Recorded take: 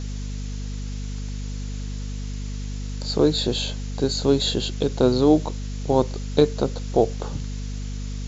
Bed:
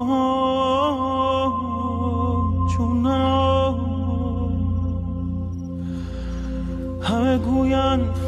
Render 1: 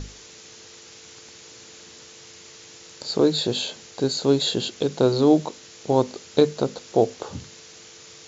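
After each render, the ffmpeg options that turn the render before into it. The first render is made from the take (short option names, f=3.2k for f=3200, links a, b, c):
-af "bandreject=f=50:t=h:w=6,bandreject=f=100:t=h:w=6,bandreject=f=150:t=h:w=6,bandreject=f=200:t=h:w=6,bandreject=f=250:t=h:w=6"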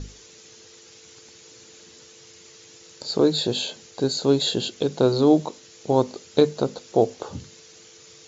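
-af "afftdn=nr=6:nf=-46"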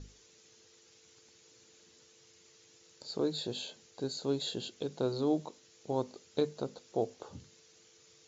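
-af "volume=-13.5dB"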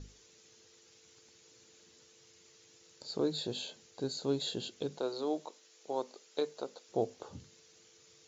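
-filter_complex "[0:a]asettb=1/sr,asplit=3[a][b][c];[a]atrim=end=4.984[d];[b]atrim=start=4.98:end=6.89,asetpts=PTS-STARTPTS,afade=t=in:d=0.004:c=qsin,afade=t=out:st=1.906:d=0.004:c=qsin,highpass=420[e];[c]atrim=start=6.886[f];[d][e]acrossfade=d=0.004:c1=hsin:c2=qsin[g];[g][f]acrossfade=d=0.004:c1=qsin:c2=hsin"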